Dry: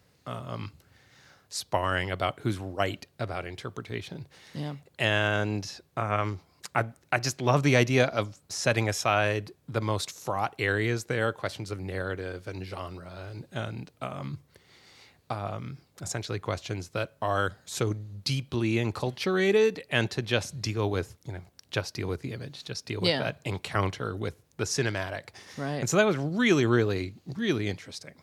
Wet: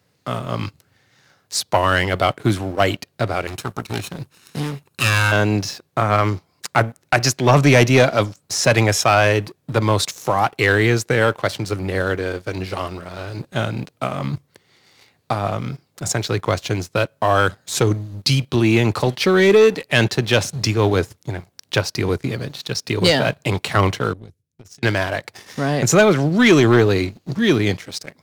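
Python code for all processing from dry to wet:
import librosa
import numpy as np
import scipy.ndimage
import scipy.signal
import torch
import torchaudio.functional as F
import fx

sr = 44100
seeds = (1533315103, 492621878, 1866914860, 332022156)

y = fx.chain(x, sr, fx.lower_of_two(delay_ms=0.74),
    fx.peak_eq(hz=11000.0, db=8.0, octaves=0.98), at=(3.47, 5.32))
y = fx.chain(y, sr, fx.tone_stack(knobs='10-0-1'),
    fx.over_compress(threshold_db=-46.0, ratio=-0.5), at=(24.13, 24.83))
y = scipy.signal.sosfilt(scipy.signal.butter(4, 87.0, 'highpass', fs=sr, output='sos'), y)
y = fx.leveller(y, sr, passes=2)
y = y * 10.0 ** (4.5 / 20.0)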